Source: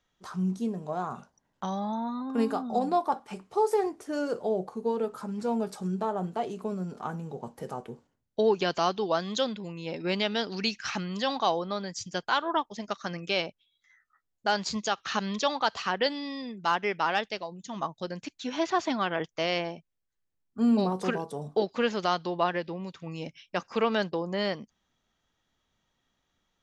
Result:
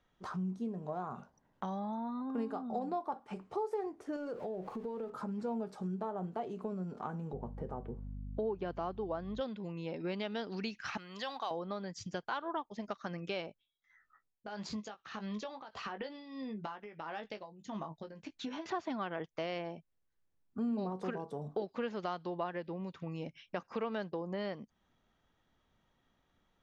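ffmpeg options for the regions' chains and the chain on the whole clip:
ffmpeg -i in.wav -filter_complex "[0:a]asettb=1/sr,asplit=3[link_01][link_02][link_03];[link_01]atrim=end=4.164[link_04];[link_02]atrim=start=4.16:end=5.1,asetpts=PTS-STARTPTS,afade=type=in:duration=0.004:curve=qsin,afade=type=out:start_time=0.936:duration=0.004:curve=qsin,aeval=exprs='val(0)+0.5*0.00531*sgn(val(0))':channel_layout=same,acompressor=threshold=-36dB:ratio=2.5:attack=3.2:release=140:knee=1:detection=peak[link_05];[link_03]atrim=start=5.096[link_06];[link_04][link_05]acrossfade=duration=0.004:curve1=hsin:curve2=qsin[link_07];[link_07][link_06]acrossfade=duration=0.004:curve1=qsin:curve2=hsin,asettb=1/sr,asplit=3[link_08][link_09][link_10];[link_08]atrim=end=7.334[link_11];[link_09]atrim=start=7.33:end=9.41,asetpts=PTS-STARTPTS,afade=type=in:duration=0.004:curve=qsin,afade=type=out:start_time=2.076:duration=0.004:curve=qsin,lowpass=frequency=1100:poles=1,aeval=exprs='val(0)+0.00708*(sin(2*PI*50*n/s)+sin(2*PI*2*50*n/s)/2+sin(2*PI*3*50*n/s)/3+sin(2*PI*4*50*n/s)/4+sin(2*PI*5*50*n/s)/5)':channel_layout=same[link_12];[link_10]atrim=start=9.406[link_13];[link_11][link_12]acrossfade=duration=0.004:curve1=hsin:curve2=qsin[link_14];[link_14][link_13]acrossfade=duration=0.004:curve1=qsin:curve2=hsin,asettb=1/sr,asplit=3[link_15][link_16][link_17];[link_15]atrim=end=10.974[link_18];[link_16]atrim=start=10.97:end=11.51,asetpts=PTS-STARTPTS,afade=type=in:duration=0.004:curve=qsin,afade=type=out:start_time=0.536:duration=0.004:curve=qsin,highpass=frequency=1200:poles=1,acrusher=bits=7:mode=log:mix=0:aa=0.000001[link_19];[link_17]atrim=start=11.506[link_20];[link_18][link_19]acrossfade=duration=0.004:curve1=hsin:curve2=qsin[link_21];[link_21][link_20]acrossfade=duration=0.004:curve1=qsin:curve2=hsin,asettb=1/sr,asplit=3[link_22][link_23][link_24];[link_22]atrim=end=13.464[link_25];[link_23]atrim=start=13.46:end=18.66,asetpts=PTS-STARTPTS,afade=type=in:duration=0.004:curve=qsin,afade=type=out:start_time=5.196:duration=0.004:curve=qsin,acompressor=threshold=-33dB:ratio=6:attack=3.2:release=140:knee=1:detection=peak,tremolo=f=1.6:d=0.82,asplit=2[link_26][link_27];[link_27]adelay=19,volume=-8dB[link_28];[link_26][link_28]amix=inputs=2:normalize=0,atrim=end_sample=229320[link_29];[link_24]atrim=start=18.656[link_30];[link_25][link_29]acrossfade=duration=0.004:curve1=hsin:curve2=qsin[link_31];[link_31][link_30]acrossfade=duration=0.004:curve1=qsin:curve2=hsin,lowpass=frequency=1700:poles=1,acompressor=threshold=-44dB:ratio=2.5,volume=3.5dB" out.wav

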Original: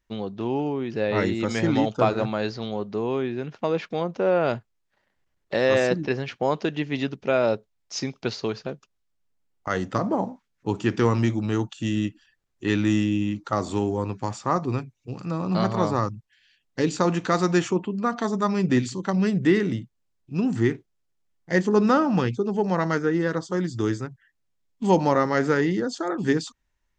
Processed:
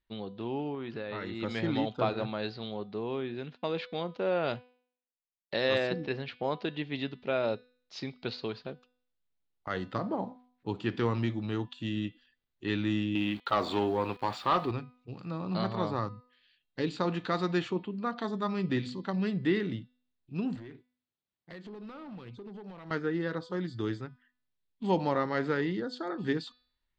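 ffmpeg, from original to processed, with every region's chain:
ffmpeg -i in.wav -filter_complex "[0:a]asettb=1/sr,asplit=3[link_01][link_02][link_03];[link_01]atrim=end=0.744[link_04];[link_02]atrim=start=0.74:end=1.42,asetpts=PTS-STARTPTS,afade=type=in:duration=0.004:curve=qsin,afade=type=out:start_time=0.676:duration=0.004:curve=qsin,equalizer=frequency=1300:width_type=o:width=0.79:gain=7.5,acompressor=threshold=-24dB:ratio=10:attack=3.2:release=140:knee=1:detection=peak[link_05];[link_03]atrim=start=1.416[link_06];[link_04][link_05]acrossfade=duration=0.004:curve1=hsin:curve2=qsin[link_07];[link_07][link_06]acrossfade=duration=0.004:curve1=qsin:curve2=hsin,asettb=1/sr,asplit=3[link_08][link_09][link_10];[link_08]atrim=end=3.344[link_11];[link_09]atrim=start=3.34:end=5.78,asetpts=PTS-STARTPTS,afade=type=in:duration=0.004:curve=qsin,afade=type=out:start_time=2.436:duration=0.004:curve=qsin,agate=range=-33dB:threshold=-41dB:ratio=3:release=100:detection=peak,highshelf=frequency=3400:gain=7.5[link_12];[link_10]atrim=start=5.776[link_13];[link_11][link_12]acrossfade=duration=0.004:curve1=hsin:curve2=qsin[link_14];[link_14][link_13]acrossfade=duration=0.004:curve1=qsin:curve2=hsin,asettb=1/sr,asplit=3[link_15][link_16][link_17];[link_15]atrim=end=13.154[link_18];[link_16]atrim=start=13.15:end=14.71,asetpts=PTS-STARTPTS,afade=type=in:duration=0.004:curve=qsin,afade=type=out:start_time=1.556:duration=0.004:curve=qsin,asplit=2[link_19][link_20];[link_20]highpass=frequency=720:poles=1,volume=18dB,asoftclip=type=tanh:threshold=-8dB[link_21];[link_19][link_21]amix=inputs=2:normalize=0,lowpass=frequency=3700:poles=1,volume=-6dB,aeval=exprs='val(0)*gte(abs(val(0)),0.0112)':channel_layout=same[link_22];[link_17]atrim=start=14.706[link_23];[link_18][link_22]acrossfade=duration=0.004:curve1=hsin:curve2=qsin[link_24];[link_24][link_23]acrossfade=duration=0.004:curve1=qsin:curve2=hsin,asettb=1/sr,asplit=3[link_25][link_26][link_27];[link_25]atrim=end=20.554[link_28];[link_26]atrim=start=20.55:end=22.91,asetpts=PTS-STARTPTS,afade=type=in:duration=0.004:curve=qsin,afade=type=out:start_time=2.356:duration=0.004:curve=qsin,highpass=71,acompressor=threshold=-31dB:ratio=12:attack=3.2:release=140:knee=1:detection=peak,asoftclip=type=hard:threshold=-31.5dB[link_29];[link_27]atrim=start=22.906[link_30];[link_28][link_29]acrossfade=duration=0.004:curve1=hsin:curve2=qsin[link_31];[link_31][link_30]acrossfade=duration=0.004:curve1=qsin:curve2=hsin,highshelf=frequency=5000:width_type=q:width=3:gain=-7.5,bandreject=frequency=248.8:width_type=h:width=4,bandreject=frequency=497.6:width_type=h:width=4,bandreject=frequency=746.4:width_type=h:width=4,bandreject=frequency=995.2:width_type=h:width=4,bandreject=frequency=1244:width_type=h:width=4,bandreject=frequency=1492.8:width_type=h:width=4,bandreject=frequency=1741.6:width_type=h:width=4,bandreject=frequency=1990.4:width_type=h:width=4,bandreject=frequency=2239.2:width_type=h:width=4,bandreject=frequency=2488:width_type=h:width=4,bandreject=frequency=2736.8:width_type=h:width=4,bandreject=frequency=2985.6:width_type=h:width=4,bandreject=frequency=3234.4:width_type=h:width=4,bandreject=frequency=3483.2:width_type=h:width=4,bandreject=frequency=3732:width_type=h:width=4,bandreject=frequency=3980.8:width_type=h:width=4,bandreject=frequency=4229.6:width_type=h:width=4,bandreject=frequency=4478.4:width_type=h:width=4,bandreject=frequency=4727.2:width_type=h:width=4,bandreject=frequency=4976:width_type=h:width=4,bandreject=frequency=5224.8:width_type=h:width=4,volume=-8.5dB" out.wav

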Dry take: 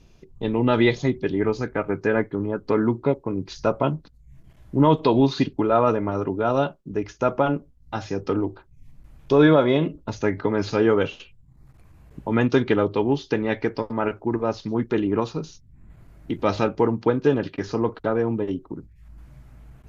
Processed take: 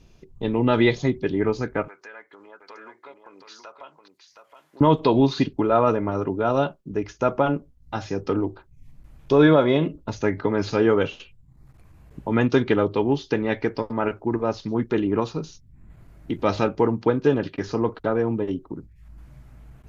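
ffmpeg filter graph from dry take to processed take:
ffmpeg -i in.wav -filter_complex "[0:a]asettb=1/sr,asplit=3[link_01][link_02][link_03];[link_01]atrim=end=1.884[link_04];[link_02]atrim=start=1.88:end=4.81,asetpts=PTS-STARTPTS,afade=type=in:duration=0.004:curve=qsin,afade=type=out:start_time=2.926:duration=0.004:curve=qsin,highpass=1000,acompressor=threshold=-45dB:ratio=2.5:attack=3.2:release=140:knee=1:detection=peak,aecho=1:1:720:0.422,atrim=end_sample=129213[link_05];[link_03]atrim=start=4.806[link_06];[link_04][link_05]acrossfade=duration=0.004:curve1=hsin:curve2=qsin[link_07];[link_07][link_06]acrossfade=duration=0.004:curve1=qsin:curve2=hsin" out.wav

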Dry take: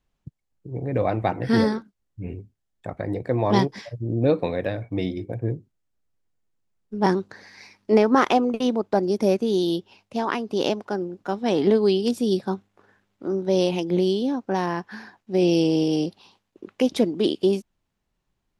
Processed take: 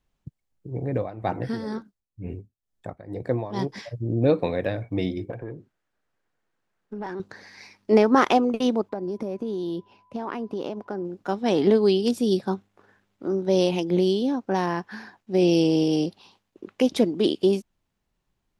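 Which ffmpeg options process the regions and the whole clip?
ffmpeg -i in.wav -filter_complex "[0:a]asettb=1/sr,asplit=3[link_01][link_02][link_03];[link_01]atrim=end=0.894[link_04];[link_02]atrim=start=0.89:end=3.68,asetpts=PTS-STARTPTS,afade=type=in:duration=0.004:curve=qsin,afade=type=out:start_time=2.786:duration=0.004:curve=qsin,equalizer=frequency=2400:width_type=o:width=0.82:gain=-4,tremolo=f=2.1:d=0.83[link_05];[link_03]atrim=start=3.676[link_06];[link_04][link_05]acrossfade=duration=0.004:curve1=hsin:curve2=qsin[link_07];[link_07][link_06]acrossfade=duration=0.004:curve1=qsin:curve2=hsin,asettb=1/sr,asplit=3[link_08][link_09][link_10];[link_08]atrim=end=5.304[link_11];[link_09]atrim=start=5.3:end=7.2,asetpts=PTS-STARTPTS,afade=type=in:duration=0.004:curve=qsin,afade=type=out:start_time=1.896:duration=0.004:curve=qsin,equalizer=frequency=1600:width_type=o:width=0.41:gain=5.5,acompressor=threshold=-33dB:ratio=8:attack=3.2:release=140:knee=1:detection=peak,asplit=2[link_12][link_13];[link_13]highpass=frequency=720:poles=1,volume=18dB,asoftclip=type=tanh:threshold=-21dB[link_14];[link_12][link_14]amix=inputs=2:normalize=0,lowpass=frequency=1500:poles=1,volume=-6dB[link_15];[link_10]atrim=start=7.196[link_16];[link_11][link_15]acrossfade=duration=0.004:curve1=hsin:curve2=qsin[link_17];[link_17][link_16]acrossfade=duration=0.004:curve1=qsin:curve2=hsin,asettb=1/sr,asplit=3[link_18][link_19][link_20];[link_18]atrim=end=8.894[link_21];[link_19]atrim=start=8.89:end=11.05,asetpts=PTS-STARTPTS,afade=type=in:duration=0.004:curve=qsin,afade=type=out:start_time=2.156:duration=0.004:curve=qsin,highshelf=frequency=2200:gain=-12,acompressor=threshold=-25dB:ratio=12:attack=3.2:release=140:knee=1:detection=peak,aeval=exprs='val(0)+0.00112*sin(2*PI*1000*n/s)':channel_layout=same[link_22];[link_20]atrim=start=11.046[link_23];[link_21][link_22]acrossfade=duration=0.004:curve1=hsin:curve2=qsin[link_24];[link_24][link_23]acrossfade=duration=0.004:curve1=qsin:curve2=hsin" out.wav

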